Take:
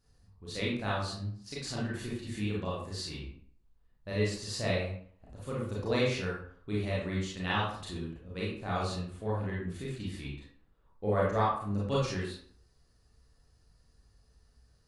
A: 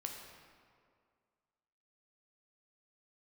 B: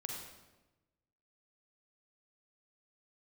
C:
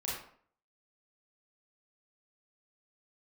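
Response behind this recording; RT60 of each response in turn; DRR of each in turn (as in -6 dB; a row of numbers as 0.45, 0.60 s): C; 2.1, 1.1, 0.55 s; 1.0, 0.0, -6.5 dB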